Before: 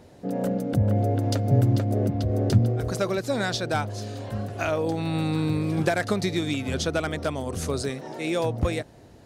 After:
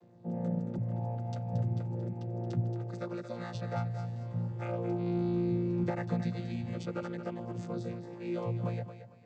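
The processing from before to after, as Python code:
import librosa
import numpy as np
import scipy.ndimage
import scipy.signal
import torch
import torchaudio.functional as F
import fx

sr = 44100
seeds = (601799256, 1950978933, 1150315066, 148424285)

y = fx.chord_vocoder(x, sr, chord='bare fifth', root=46)
y = fx.low_shelf(y, sr, hz=280.0, db=-11.0, at=(0.78, 3.55))
y = fx.echo_thinned(y, sr, ms=226, feedback_pct=31, hz=210.0, wet_db=-9.5)
y = y * 10.0 ** (-4.0 / 20.0)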